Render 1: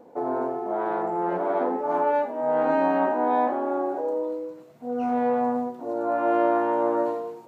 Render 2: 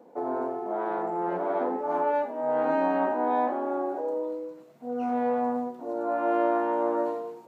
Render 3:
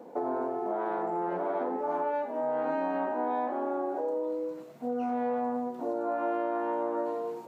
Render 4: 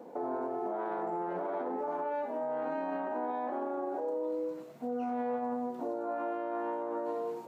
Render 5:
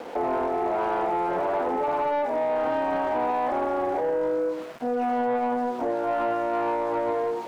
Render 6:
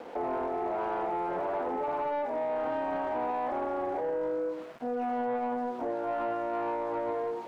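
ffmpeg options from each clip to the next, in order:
-af "highpass=f=140:w=0.5412,highpass=f=140:w=1.3066,volume=-3dB"
-af "acompressor=threshold=-35dB:ratio=4,volume=5.5dB"
-af "alimiter=level_in=2.5dB:limit=-24dB:level=0:latency=1:release=33,volume=-2.5dB,volume=-1dB"
-filter_complex "[0:a]aeval=exprs='val(0)*gte(abs(val(0)),0.00251)':c=same,asplit=2[a][b];[b]highpass=f=720:p=1,volume=12dB,asoftclip=type=tanh:threshold=-27dB[c];[a][c]amix=inputs=2:normalize=0,lowpass=f=2.3k:p=1,volume=-6dB,volume=8.5dB"
-af "highshelf=f=3.9k:g=-6,volume=-6dB"

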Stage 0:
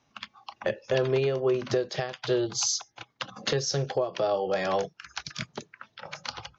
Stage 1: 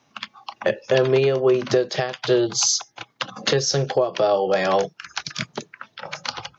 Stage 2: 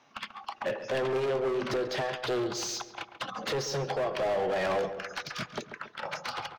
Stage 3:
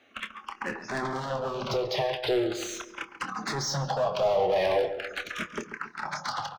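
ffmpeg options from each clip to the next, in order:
-af "highpass=120,volume=7.5dB"
-filter_complex "[0:a]volume=21.5dB,asoftclip=hard,volume=-21.5dB,asplit=2[a][b];[b]highpass=f=720:p=1,volume=13dB,asoftclip=type=tanh:threshold=-21.5dB[c];[a][c]amix=inputs=2:normalize=0,lowpass=f=2.3k:p=1,volume=-6dB,asplit=2[d][e];[e]adelay=138,lowpass=f=2k:p=1,volume=-10dB,asplit=2[f][g];[g]adelay=138,lowpass=f=2k:p=1,volume=0.52,asplit=2[h][i];[i]adelay=138,lowpass=f=2k:p=1,volume=0.52,asplit=2[j][k];[k]adelay=138,lowpass=f=2k:p=1,volume=0.52,asplit=2[l][m];[m]adelay=138,lowpass=f=2k:p=1,volume=0.52,asplit=2[n][o];[o]adelay=138,lowpass=f=2k:p=1,volume=0.52[p];[f][h][j][l][n][p]amix=inputs=6:normalize=0[q];[d][q]amix=inputs=2:normalize=0,volume=-4dB"
-filter_complex "[0:a]asplit=2[a][b];[b]adelay=27,volume=-11dB[c];[a][c]amix=inputs=2:normalize=0,asplit=2[d][e];[e]afreqshift=-0.39[f];[d][f]amix=inputs=2:normalize=1,volume=5dB"

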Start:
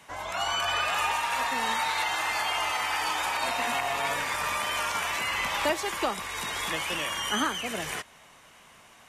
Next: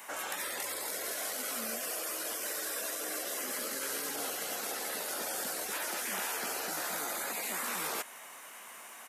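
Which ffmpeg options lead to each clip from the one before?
-af "aemphasis=mode=production:type=riaa,afftfilt=real='re*lt(hypot(re,im),0.0447)':imag='im*lt(hypot(re,im),0.0447)':win_size=1024:overlap=0.75,firequalizer=gain_entry='entry(120,0);entry(220,13);entry(1800,11);entry(3300,3);entry(4900,2);entry(8900,5)':delay=0.05:min_phase=1,volume=-8dB"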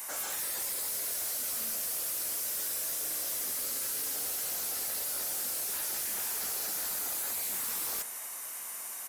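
-af "aexciter=amount=3.6:drive=3.6:freq=4.3k,asoftclip=type=hard:threshold=-33dB,bandreject=f=57.94:t=h:w=4,bandreject=f=115.88:t=h:w=4,bandreject=f=173.82:t=h:w=4,bandreject=f=231.76:t=h:w=4,bandreject=f=289.7:t=h:w=4,bandreject=f=347.64:t=h:w=4,bandreject=f=405.58:t=h:w=4,bandreject=f=463.52:t=h:w=4,bandreject=f=521.46:t=h:w=4,bandreject=f=579.4:t=h:w=4,bandreject=f=637.34:t=h:w=4,bandreject=f=695.28:t=h:w=4,bandreject=f=753.22:t=h:w=4,bandreject=f=811.16:t=h:w=4,bandreject=f=869.1:t=h:w=4,bandreject=f=927.04:t=h:w=4,bandreject=f=984.98:t=h:w=4,bandreject=f=1.04292k:t=h:w=4,bandreject=f=1.10086k:t=h:w=4,bandreject=f=1.1588k:t=h:w=4,bandreject=f=1.21674k:t=h:w=4,bandreject=f=1.27468k:t=h:w=4,bandreject=f=1.33262k:t=h:w=4,bandreject=f=1.39056k:t=h:w=4,bandreject=f=1.4485k:t=h:w=4,bandreject=f=1.50644k:t=h:w=4,bandreject=f=1.56438k:t=h:w=4,bandreject=f=1.62232k:t=h:w=4,bandreject=f=1.68026k:t=h:w=4,bandreject=f=1.7382k:t=h:w=4,bandreject=f=1.79614k:t=h:w=4,bandreject=f=1.85408k:t=h:w=4,bandreject=f=1.91202k:t=h:w=4,bandreject=f=1.96996k:t=h:w=4"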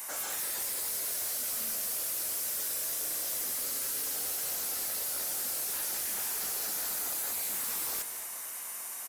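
-af "aecho=1:1:215|430|645|860|1075:0.251|0.131|0.0679|0.0353|0.0184"

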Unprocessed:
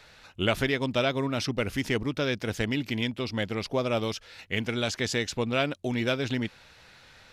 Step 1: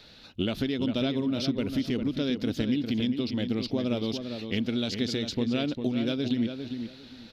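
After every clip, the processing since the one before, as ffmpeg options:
-filter_complex "[0:a]equalizer=f=250:t=o:w=1:g=11,equalizer=f=1k:t=o:w=1:g=-5,equalizer=f=2k:t=o:w=1:g=-6,equalizer=f=4k:t=o:w=1:g=10,equalizer=f=8k:t=o:w=1:g=-10,acompressor=threshold=-25dB:ratio=6,asplit=2[a][b];[b]adelay=401,lowpass=f=2.9k:p=1,volume=-7dB,asplit=2[c][d];[d]adelay=401,lowpass=f=2.9k:p=1,volume=0.22,asplit=2[e][f];[f]adelay=401,lowpass=f=2.9k:p=1,volume=0.22[g];[a][c][e][g]amix=inputs=4:normalize=0"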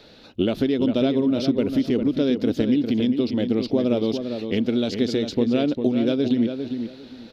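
-af "equalizer=f=430:w=0.57:g=10"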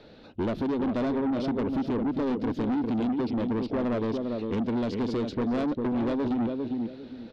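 -af "lowpass=f=1.4k:p=1,asoftclip=type=tanh:threshold=-24dB"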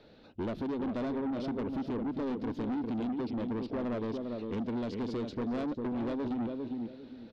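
-af "aecho=1:1:459:0.075,volume=-6.5dB"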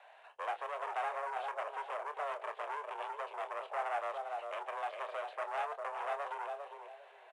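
-filter_complex "[0:a]asplit=2[a][b];[b]adelay=27,volume=-10dB[c];[a][c]amix=inputs=2:normalize=0,highpass=f=580:t=q:w=0.5412,highpass=f=580:t=q:w=1.307,lowpass=f=2.8k:t=q:w=0.5176,lowpass=f=2.8k:t=q:w=0.7071,lowpass=f=2.8k:t=q:w=1.932,afreqshift=150,volume=5dB" -ar 22050 -c:a adpcm_ima_wav

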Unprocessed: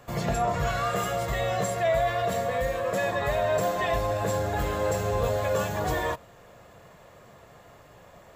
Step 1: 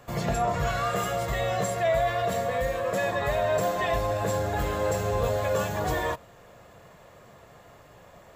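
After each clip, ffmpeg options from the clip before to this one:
-af anull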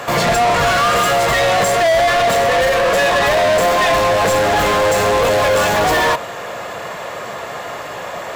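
-filter_complex "[0:a]asplit=2[a][b];[b]highpass=f=720:p=1,volume=28dB,asoftclip=type=tanh:threshold=-14.5dB[c];[a][c]amix=inputs=2:normalize=0,lowpass=f=5.1k:p=1,volume=-6dB,volume=6.5dB"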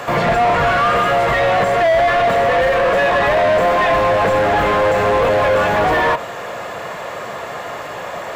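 -filter_complex "[0:a]acrossover=split=2900[a][b];[b]acompressor=threshold=-40dB:ratio=4:attack=1:release=60[c];[a][c]amix=inputs=2:normalize=0"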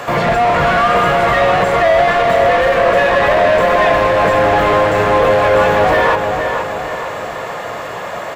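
-filter_complex "[0:a]asplit=2[a][b];[b]adelay=469,lowpass=f=4.7k:p=1,volume=-6dB,asplit=2[c][d];[d]adelay=469,lowpass=f=4.7k:p=1,volume=0.51,asplit=2[e][f];[f]adelay=469,lowpass=f=4.7k:p=1,volume=0.51,asplit=2[g][h];[h]adelay=469,lowpass=f=4.7k:p=1,volume=0.51,asplit=2[i][j];[j]adelay=469,lowpass=f=4.7k:p=1,volume=0.51,asplit=2[k][l];[l]adelay=469,lowpass=f=4.7k:p=1,volume=0.51[m];[a][c][e][g][i][k][m]amix=inputs=7:normalize=0,volume=1.5dB"

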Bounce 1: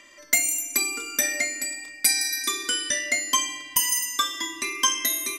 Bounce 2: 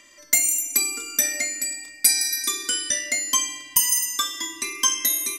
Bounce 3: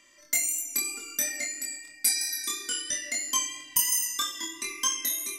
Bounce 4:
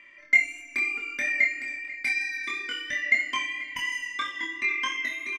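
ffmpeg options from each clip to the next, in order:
-af "bass=f=250:g=4,treble=f=4k:g=7,volume=-3dB"
-af "dynaudnorm=f=340:g=7:m=11.5dB,flanger=delay=22.5:depth=2.3:speed=3,volume=-4dB"
-af "lowpass=f=2.2k:t=q:w=6,aecho=1:1:490:0.119"

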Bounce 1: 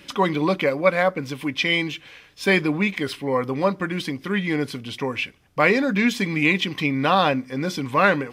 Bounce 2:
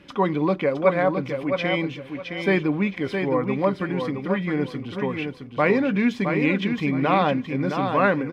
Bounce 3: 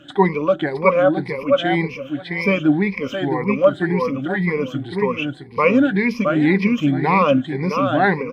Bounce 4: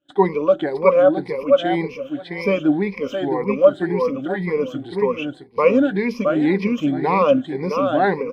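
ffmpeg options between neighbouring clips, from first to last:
-filter_complex "[0:a]lowpass=f=1.2k:p=1,asplit=2[a][b];[b]aecho=0:1:665|1330|1995:0.501|0.12|0.0289[c];[a][c]amix=inputs=2:normalize=0"
-af "afftfilt=real='re*pow(10,21/40*sin(2*PI*(0.86*log(max(b,1)*sr/1024/100)/log(2)-(1.9)*(pts-256)/sr)))':imag='im*pow(10,21/40*sin(2*PI*(0.86*log(max(b,1)*sr/1024/100)/log(2)-(1.9)*(pts-256)/sr)))':win_size=1024:overlap=0.75"
-af "agate=range=-33dB:threshold=-31dB:ratio=3:detection=peak,equalizer=f=125:t=o:w=1:g=-7,equalizer=f=500:t=o:w=1:g=5,equalizer=f=2k:t=o:w=1:g=-5,volume=-2dB"

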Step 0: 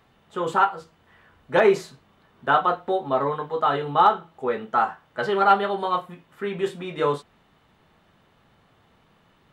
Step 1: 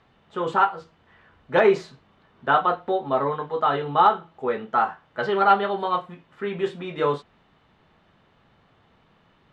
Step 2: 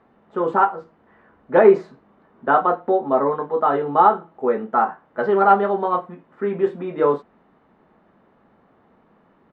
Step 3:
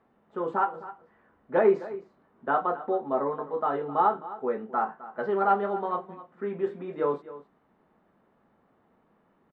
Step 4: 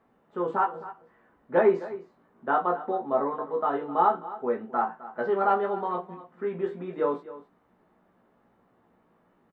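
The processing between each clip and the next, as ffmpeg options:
-af "lowpass=5k"
-af "firequalizer=gain_entry='entry(130,0);entry(210,12);entry(1900,3);entry(3100,-7)':delay=0.05:min_phase=1,volume=-5dB"
-af "aecho=1:1:260:0.158,volume=-9dB"
-filter_complex "[0:a]asplit=2[a][b];[b]adelay=17,volume=-5dB[c];[a][c]amix=inputs=2:normalize=0"

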